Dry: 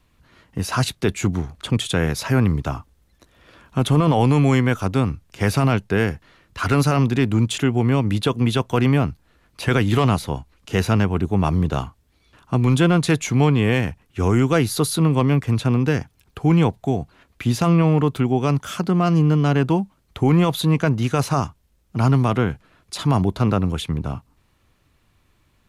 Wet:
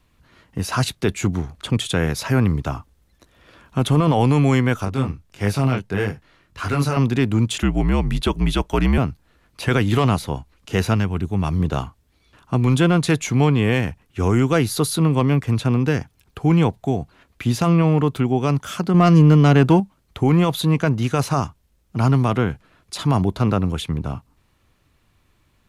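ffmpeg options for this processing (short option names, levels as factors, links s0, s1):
-filter_complex "[0:a]asettb=1/sr,asplit=3[s0][s1][s2];[s0]atrim=end=4.854[s3];[s1]atrim=start=4.85:end=6.97,asetpts=PTS-STARTPTS,afade=t=in:d=0.004:c=qsin,afade=t=out:st=2.116:d=0.004:c=qsin,flanger=delay=19.5:depth=4.7:speed=1.6[s4];[s2]atrim=start=6.966[s5];[s3][s4]acrossfade=d=0.004:c1=hsin:c2=qsin[s6];[s6][s5]acrossfade=d=0.004:c1=qsin:c2=hsin,asettb=1/sr,asplit=3[s7][s8][s9];[s7]atrim=end=7.624[s10];[s8]atrim=start=7.62:end=8.98,asetpts=PTS-STARTPTS,afade=t=in:d=0.004:c=qsin,afade=t=out:st=1.356:d=0.004:c=qsin,afreqshift=-67[s11];[s9]atrim=start=8.976[s12];[s10][s11]acrossfade=d=0.004:c1=hsin:c2=qsin[s13];[s13][s12]acrossfade=d=0.004:c1=qsin:c2=hsin,asettb=1/sr,asplit=3[s14][s15][s16];[s14]atrim=end=10.944[s17];[s15]atrim=start=10.94:end=11.6,asetpts=PTS-STARTPTS,afade=t=in:d=0.004:c=qsin,afade=t=out:st=0.656:d=0.004:c=qsin,equalizer=f=580:t=o:w=2.8:g=-6[s18];[s16]atrim=start=11.596[s19];[s17][s18]acrossfade=d=0.004:c1=hsin:c2=qsin[s20];[s20][s19]acrossfade=d=0.004:c1=qsin:c2=hsin,asettb=1/sr,asplit=3[s21][s22][s23];[s21]atrim=end=18.944[s24];[s22]atrim=start=18.94:end=19.8,asetpts=PTS-STARTPTS,afade=t=in:d=0.004:c=qsin,afade=t=out:st=0.856:d=0.004:c=qsin,acontrast=37[s25];[s23]atrim=start=19.796[s26];[s24][s25]acrossfade=d=0.004:c1=hsin:c2=qsin[s27];[s27][s26]acrossfade=d=0.004:c1=qsin:c2=hsin"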